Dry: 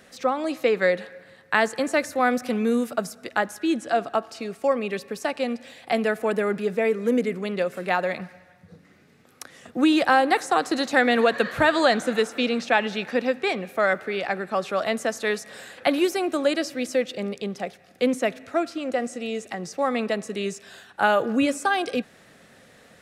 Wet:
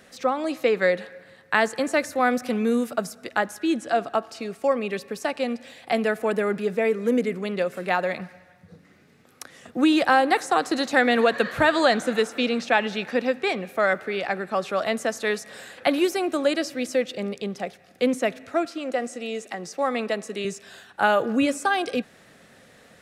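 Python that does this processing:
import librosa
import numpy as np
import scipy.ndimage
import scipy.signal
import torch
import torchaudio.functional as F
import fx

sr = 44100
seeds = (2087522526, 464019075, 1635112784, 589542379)

y = fx.bessel_highpass(x, sr, hz=230.0, order=2, at=(18.65, 20.45))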